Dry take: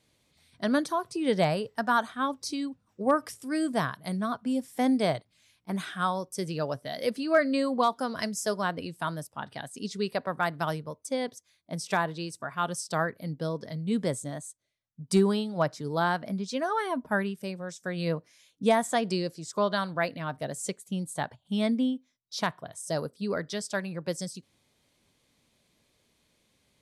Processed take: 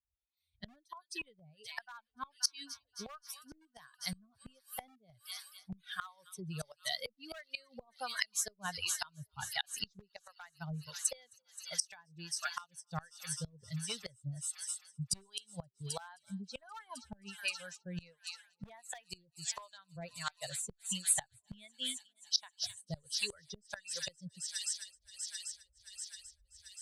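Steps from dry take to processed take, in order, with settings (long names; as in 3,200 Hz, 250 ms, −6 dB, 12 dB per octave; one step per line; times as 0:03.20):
spectral dynamics exaggerated over time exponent 2
camcorder AGC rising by 8.2 dB per second
on a send: delay with a high-pass on its return 263 ms, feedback 82%, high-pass 4,500 Hz, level −10 dB
on the sum: two-band tremolo in antiphase 1.4 Hz, depth 100%, crossover 440 Hz
in parallel at −3 dB: downward compressor 8 to 1, threshold −46 dBFS, peak gain reduction 22 dB
on the sum: high-shelf EQ 3,400 Hz −8.5 dB
hard clipping −23.5 dBFS, distortion −20 dB
gate with flip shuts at −30 dBFS, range −26 dB
guitar amp tone stack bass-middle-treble 10-0-10
level +15.5 dB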